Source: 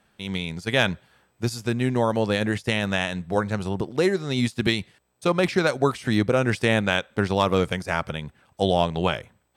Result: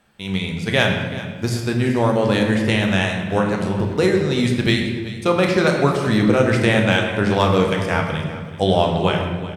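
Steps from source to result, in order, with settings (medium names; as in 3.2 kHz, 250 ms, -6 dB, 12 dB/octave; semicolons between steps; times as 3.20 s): feedback delay 383 ms, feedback 34%, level -15.5 dB; on a send at -1.5 dB: reverberation RT60 1.3 s, pre-delay 13 ms; on the sum: trim +2.5 dB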